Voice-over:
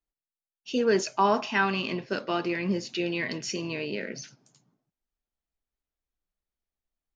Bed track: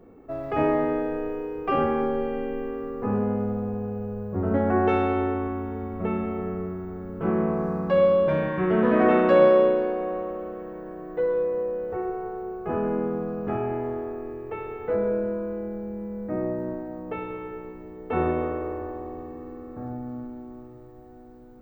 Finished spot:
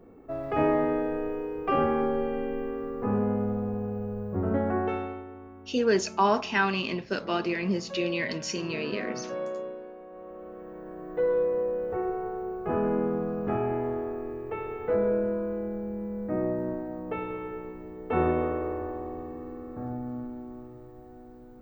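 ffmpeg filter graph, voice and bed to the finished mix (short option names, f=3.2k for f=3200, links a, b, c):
-filter_complex "[0:a]adelay=5000,volume=0dB[a];[1:a]volume=15.5dB,afade=t=out:st=4.34:d=0.9:silence=0.158489,afade=t=in:st=10.1:d=1.22:silence=0.141254[b];[a][b]amix=inputs=2:normalize=0"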